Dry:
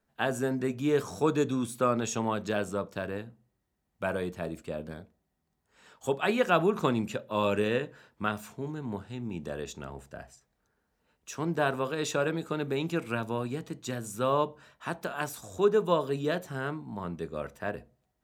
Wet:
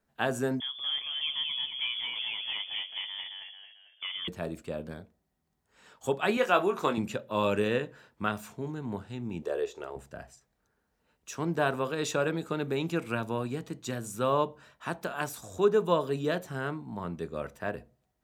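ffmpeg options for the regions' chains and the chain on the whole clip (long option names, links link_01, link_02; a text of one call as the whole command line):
ffmpeg -i in.wav -filter_complex "[0:a]asettb=1/sr,asplit=3[link_01][link_02][link_03];[link_01]atrim=end=0.604[link_04];[link_02]atrim=start=0.6:end=4.28,asetpts=PTS-STARTPTS,afade=type=in:duration=0.004:curve=qsin,afade=type=out:start_time=3.676:duration=0.004:curve=qsin,acompressor=threshold=-43dB:ratio=1.5:attack=3.2:release=140:knee=1:detection=peak,asplit=6[link_05][link_06][link_07][link_08][link_09][link_10];[link_06]adelay=222,afreqshift=75,volume=-3.5dB[link_11];[link_07]adelay=444,afreqshift=150,volume=-11dB[link_12];[link_08]adelay=666,afreqshift=225,volume=-18.6dB[link_13];[link_09]adelay=888,afreqshift=300,volume=-26.1dB[link_14];[link_10]adelay=1110,afreqshift=375,volume=-33.6dB[link_15];[link_05][link_11][link_12][link_13][link_14][link_15]amix=inputs=6:normalize=0,atrim=end_sample=162288,lowpass=frequency=3100:width_type=q:width=0.5098,lowpass=frequency=3100:width_type=q:width=0.6013,lowpass=frequency=3100:width_type=q:width=0.9,lowpass=frequency=3100:width_type=q:width=2.563,afreqshift=-3600[link_16];[link_03]atrim=start=4.276[link_17];[link_04][link_16]acrossfade=duration=0.004:curve1=hsin:curve2=qsin[link_18];[link_18][link_17]acrossfade=duration=0.004:curve1=qsin:curve2=hsin,asettb=1/sr,asplit=3[link_19][link_20][link_21];[link_19]atrim=end=6.374[link_22];[link_20]atrim=start=6.37:end=6.98,asetpts=PTS-STARTPTS,afade=type=in:duration=0.004:curve=qsin,afade=type=out:start_time=0.606:duration=0.004:curve=qsin,bass=frequency=250:gain=-12,treble=frequency=4000:gain=0,asplit=2[link_23][link_24];[link_24]adelay=21,volume=-7dB[link_25];[link_23][link_25]amix=inputs=2:normalize=0,atrim=end_sample=26901[link_26];[link_21]atrim=start=6.976[link_27];[link_22][link_26]acrossfade=duration=0.004:curve1=hsin:curve2=qsin[link_28];[link_28][link_27]acrossfade=duration=0.004:curve1=qsin:curve2=hsin,asettb=1/sr,asplit=3[link_29][link_30][link_31];[link_29]atrim=end=9.424[link_32];[link_30]atrim=start=9.42:end=9.96,asetpts=PTS-STARTPTS,afade=type=in:duration=0.004:curve=qsin,afade=type=out:start_time=0.536:duration=0.004:curve=qsin,acrossover=split=3000[link_33][link_34];[link_34]acompressor=threshold=-50dB:ratio=4:attack=1:release=60[link_35];[link_33][link_35]amix=inputs=2:normalize=0,lowshelf=frequency=290:width_type=q:width=3:gain=-12.5,asplit=2[link_36][link_37];[link_37]adelay=14,volume=-14dB[link_38];[link_36][link_38]amix=inputs=2:normalize=0,atrim=end_sample=23814[link_39];[link_31]atrim=start=9.956[link_40];[link_32][link_39]acrossfade=duration=0.004:curve1=hsin:curve2=qsin[link_41];[link_41][link_40]acrossfade=duration=0.004:curve1=qsin:curve2=hsin" out.wav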